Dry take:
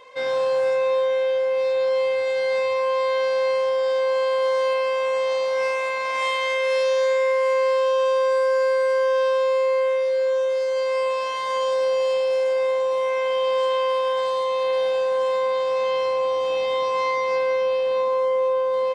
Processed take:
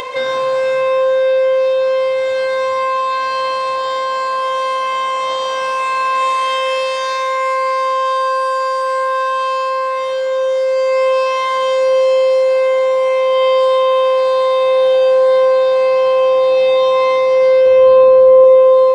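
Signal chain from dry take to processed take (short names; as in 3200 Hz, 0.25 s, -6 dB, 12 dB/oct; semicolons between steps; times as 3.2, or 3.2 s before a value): 17.66–18.44 tilt -3.5 dB/oct; reverb RT60 2.0 s, pre-delay 3 ms, DRR -1.5 dB; upward compressor, threshold -15 dBFS; gain +2.5 dB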